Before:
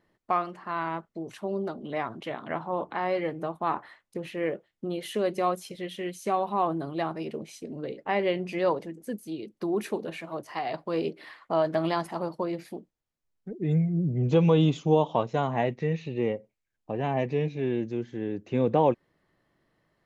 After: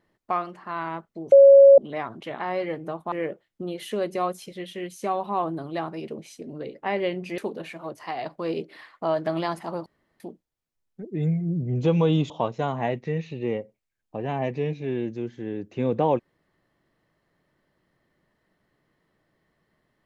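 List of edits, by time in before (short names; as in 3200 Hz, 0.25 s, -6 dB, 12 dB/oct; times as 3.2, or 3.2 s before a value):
1.32–1.78 bleep 553 Hz -7.5 dBFS
2.39–2.94 cut
3.67–4.35 cut
8.61–9.86 cut
12.34–12.68 room tone
14.78–15.05 cut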